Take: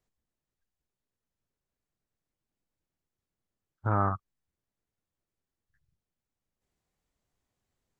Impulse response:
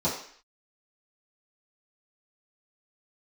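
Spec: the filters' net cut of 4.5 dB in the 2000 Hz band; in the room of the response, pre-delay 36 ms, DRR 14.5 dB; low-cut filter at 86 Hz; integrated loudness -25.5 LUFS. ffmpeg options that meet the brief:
-filter_complex "[0:a]highpass=86,equalizer=f=2k:t=o:g=-7.5,asplit=2[a][b];[1:a]atrim=start_sample=2205,adelay=36[c];[b][c]afir=irnorm=-1:irlink=0,volume=-25dB[d];[a][d]amix=inputs=2:normalize=0,volume=6.5dB"

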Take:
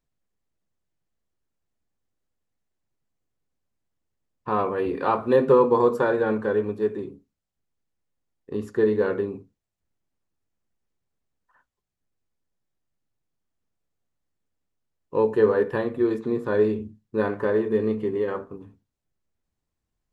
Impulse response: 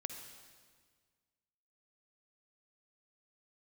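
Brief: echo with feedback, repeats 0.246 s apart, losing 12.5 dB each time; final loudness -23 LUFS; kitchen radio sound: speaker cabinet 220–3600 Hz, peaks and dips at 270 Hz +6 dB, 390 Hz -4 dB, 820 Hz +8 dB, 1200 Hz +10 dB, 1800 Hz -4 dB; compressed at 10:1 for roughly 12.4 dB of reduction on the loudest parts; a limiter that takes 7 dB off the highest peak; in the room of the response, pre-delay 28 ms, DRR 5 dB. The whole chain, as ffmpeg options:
-filter_complex "[0:a]acompressor=threshold=-25dB:ratio=10,alimiter=limit=-22dB:level=0:latency=1,aecho=1:1:246|492|738:0.237|0.0569|0.0137,asplit=2[a][b];[1:a]atrim=start_sample=2205,adelay=28[c];[b][c]afir=irnorm=-1:irlink=0,volume=-3.5dB[d];[a][d]amix=inputs=2:normalize=0,highpass=220,equalizer=f=270:t=q:w=4:g=6,equalizer=f=390:t=q:w=4:g=-4,equalizer=f=820:t=q:w=4:g=8,equalizer=f=1.2k:t=q:w=4:g=10,equalizer=f=1.8k:t=q:w=4:g=-4,lowpass=f=3.6k:w=0.5412,lowpass=f=3.6k:w=1.3066,volume=7.5dB"

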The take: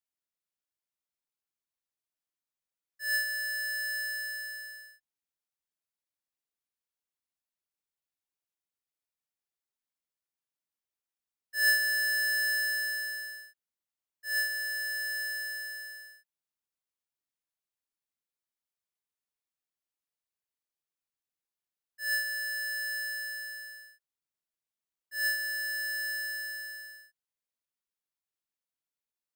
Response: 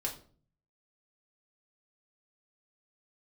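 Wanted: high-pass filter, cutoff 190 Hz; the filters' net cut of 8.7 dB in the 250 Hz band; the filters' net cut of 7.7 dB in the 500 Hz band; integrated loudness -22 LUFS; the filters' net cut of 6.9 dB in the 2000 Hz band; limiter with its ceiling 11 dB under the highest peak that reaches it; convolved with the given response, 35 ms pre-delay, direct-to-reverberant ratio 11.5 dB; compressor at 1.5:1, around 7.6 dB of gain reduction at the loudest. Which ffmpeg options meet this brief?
-filter_complex "[0:a]highpass=190,equalizer=f=250:t=o:g=-7,equalizer=f=500:t=o:g=-8,equalizer=f=2k:t=o:g=-7.5,acompressor=threshold=-47dB:ratio=1.5,alimiter=level_in=15dB:limit=-24dB:level=0:latency=1,volume=-15dB,asplit=2[a][b];[1:a]atrim=start_sample=2205,adelay=35[c];[b][c]afir=irnorm=-1:irlink=0,volume=-13.5dB[d];[a][d]amix=inputs=2:normalize=0,volume=22.5dB"

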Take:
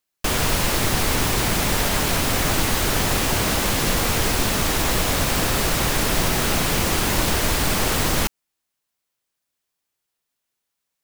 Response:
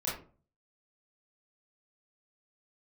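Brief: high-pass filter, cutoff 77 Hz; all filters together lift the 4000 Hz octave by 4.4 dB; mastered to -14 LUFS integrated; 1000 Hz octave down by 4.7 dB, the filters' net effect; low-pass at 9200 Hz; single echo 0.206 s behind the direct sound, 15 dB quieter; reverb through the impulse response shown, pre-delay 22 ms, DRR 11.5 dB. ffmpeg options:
-filter_complex "[0:a]highpass=77,lowpass=9.2k,equalizer=f=1k:t=o:g=-6.5,equalizer=f=4k:t=o:g=6,aecho=1:1:206:0.178,asplit=2[a][b];[1:a]atrim=start_sample=2205,adelay=22[c];[b][c]afir=irnorm=-1:irlink=0,volume=-16.5dB[d];[a][d]amix=inputs=2:normalize=0,volume=6dB"

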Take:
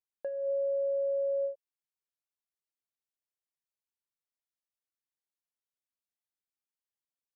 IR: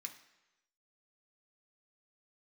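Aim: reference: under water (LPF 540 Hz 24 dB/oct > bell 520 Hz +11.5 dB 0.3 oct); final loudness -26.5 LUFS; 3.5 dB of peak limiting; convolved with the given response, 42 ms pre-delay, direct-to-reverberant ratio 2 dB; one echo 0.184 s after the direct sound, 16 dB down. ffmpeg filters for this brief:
-filter_complex "[0:a]alimiter=level_in=6.5dB:limit=-24dB:level=0:latency=1,volume=-6.5dB,aecho=1:1:184:0.158,asplit=2[a][b];[1:a]atrim=start_sample=2205,adelay=42[c];[b][c]afir=irnorm=-1:irlink=0,volume=2dB[d];[a][d]amix=inputs=2:normalize=0,lowpass=f=540:w=0.5412,lowpass=f=540:w=1.3066,equalizer=f=520:t=o:w=0.3:g=11.5,volume=1.5dB"

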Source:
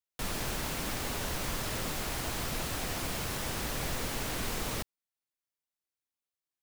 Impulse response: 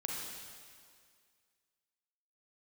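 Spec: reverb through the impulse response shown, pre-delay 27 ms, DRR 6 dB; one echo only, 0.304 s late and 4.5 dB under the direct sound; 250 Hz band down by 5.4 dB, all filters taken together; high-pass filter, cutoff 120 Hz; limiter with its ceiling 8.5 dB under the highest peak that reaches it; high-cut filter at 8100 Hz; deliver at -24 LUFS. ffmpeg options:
-filter_complex "[0:a]highpass=120,lowpass=8.1k,equalizer=f=250:t=o:g=-7,alimiter=level_in=9.5dB:limit=-24dB:level=0:latency=1,volume=-9.5dB,aecho=1:1:304:0.596,asplit=2[a][b];[1:a]atrim=start_sample=2205,adelay=27[c];[b][c]afir=irnorm=-1:irlink=0,volume=-8dB[d];[a][d]amix=inputs=2:normalize=0,volume=15.5dB"

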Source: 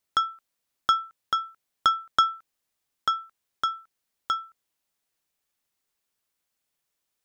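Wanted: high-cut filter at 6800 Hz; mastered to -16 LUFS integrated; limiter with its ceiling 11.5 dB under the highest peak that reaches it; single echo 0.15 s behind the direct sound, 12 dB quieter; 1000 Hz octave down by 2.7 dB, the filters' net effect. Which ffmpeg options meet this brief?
-af "lowpass=6.8k,equalizer=f=1k:t=o:g=-4.5,alimiter=limit=-21dB:level=0:latency=1,aecho=1:1:150:0.251,volume=18.5dB"

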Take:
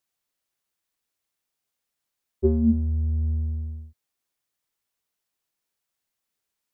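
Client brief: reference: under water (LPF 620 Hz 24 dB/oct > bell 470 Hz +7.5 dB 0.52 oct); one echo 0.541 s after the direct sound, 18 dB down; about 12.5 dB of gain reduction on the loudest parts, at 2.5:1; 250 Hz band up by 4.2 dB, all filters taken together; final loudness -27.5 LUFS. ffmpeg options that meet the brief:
-af "equalizer=f=250:t=o:g=4,acompressor=threshold=-32dB:ratio=2.5,lowpass=f=620:w=0.5412,lowpass=f=620:w=1.3066,equalizer=f=470:t=o:w=0.52:g=7.5,aecho=1:1:541:0.126,volume=4.5dB"

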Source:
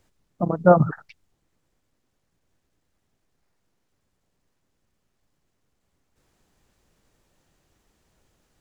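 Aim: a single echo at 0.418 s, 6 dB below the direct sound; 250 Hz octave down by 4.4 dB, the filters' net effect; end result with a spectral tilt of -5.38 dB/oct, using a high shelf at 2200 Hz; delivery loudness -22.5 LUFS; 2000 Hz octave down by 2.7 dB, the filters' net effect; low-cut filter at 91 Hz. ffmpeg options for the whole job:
-af "highpass=91,equalizer=f=250:t=o:g=-8,equalizer=f=2k:t=o:g=-7.5,highshelf=f=2.2k:g=5,aecho=1:1:418:0.501,volume=0.5dB"

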